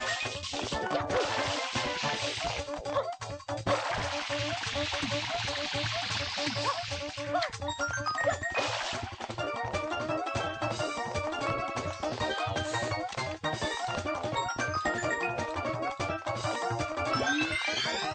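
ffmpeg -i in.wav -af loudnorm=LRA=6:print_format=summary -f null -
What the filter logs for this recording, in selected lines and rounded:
Input Integrated:    -31.6 LUFS
Input True Peak:     -15.4 dBTP
Input LRA:             1.5 LU
Input Threshold:     -41.6 LUFS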